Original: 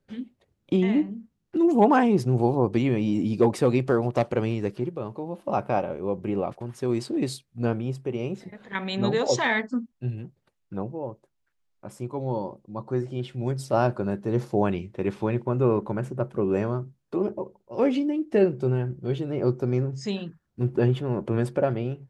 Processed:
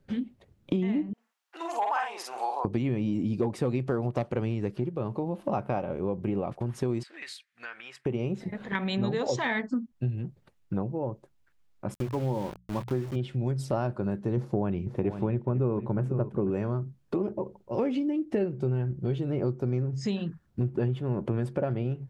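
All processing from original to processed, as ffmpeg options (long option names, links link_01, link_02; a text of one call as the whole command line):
ffmpeg -i in.wav -filter_complex "[0:a]asettb=1/sr,asplit=3[link_01][link_02][link_03];[link_01]atrim=end=1.134[link_04];[link_02]atrim=start=1.13:end=2.65,asetpts=PTS-STARTPTS,afade=type=in:duration=0.004:curve=qsin,afade=type=out:start_time=1.516:duration=0.004:curve=qsin,highpass=frequency=800:width=0.5412,highpass=frequency=800:width=1.3066,asplit=2[link_05][link_06];[link_06]adelay=48,volume=-2.5dB[link_07];[link_05][link_07]amix=inputs=2:normalize=0,atrim=end_sample=67032[link_08];[link_03]atrim=start=2.646[link_09];[link_04][link_08]acrossfade=duration=0.004:curve1=hsin:curve2=qsin[link_10];[link_10][link_09]acrossfade=duration=0.004:curve1=qsin:curve2=hsin,asettb=1/sr,asplit=3[link_11][link_12][link_13];[link_11]atrim=end=7.034[link_14];[link_12]atrim=start=7.03:end=8.06,asetpts=PTS-STARTPTS,afade=type=in:duration=0.004:curve=qsin,afade=type=out:start_time=1.026:duration=0.004:curve=qsin,highpass=frequency=1800:width_type=q:width=3.2,highshelf=frequency=5900:gain=-9,acompressor=threshold=-45dB:ratio=2.5:attack=3.2:release=140:knee=1:detection=peak[link_15];[link_13]atrim=start=8.056[link_16];[link_14][link_15]acrossfade=duration=0.004:curve1=hsin:curve2=qsin[link_17];[link_17][link_16]acrossfade=duration=0.004:curve1=qsin:curve2=hsin,asettb=1/sr,asplit=3[link_18][link_19][link_20];[link_18]atrim=end=11.944[link_21];[link_19]atrim=start=11.94:end=13.16,asetpts=PTS-STARTPTS,afade=type=in:duration=0.004:curve=qsin,afade=type=out:start_time=1.216:duration=0.004:curve=qsin,aeval=exprs='val(0)*gte(abs(val(0)),0.0119)':channel_layout=same,bandreject=frequency=60:width_type=h:width=6,bandreject=frequency=120:width_type=h:width=6,bandreject=frequency=180:width_type=h:width=6[link_22];[link_20]atrim=start=13.156[link_23];[link_21][link_22]acrossfade=duration=0.004:curve1=hsin:curve2=qsin[link_24];[link_24][link_23]acrossfade=duration=0.004:curve1=qsin:curve2=hsin,asettb=1/sr,asplit=3[link_25][link_26][link_27];[link_25]atrim=end=14.374[link_28];[link_26]atrim=start=14.37:end=16.51,asetpts=PTS-STARTPTS,afade=type=in:duration=0.004:curve=qsin,afade=type=out:start_time=2.136:duration=0.004:curve=qsin,tiltshelf=frequency=1300:gain=4,aecho=1:1:494:0.211,atrim=end_sample=94374[link_29];[link_27]atrim=start=16.506[link_30];[link_28][link_29]acrossfade=duration=0.004:curve1=hsin:curve2=qsin[link_31];[link_31][link_30]acrossfade=duration=0.004:curve1=qsin:curve2=hsin,bass=frequency=250:gain=5,treble=frequency=4000:gain=-3,acompressor=threshold=-33dB:ratio=4,volume=5.5dB" out.wav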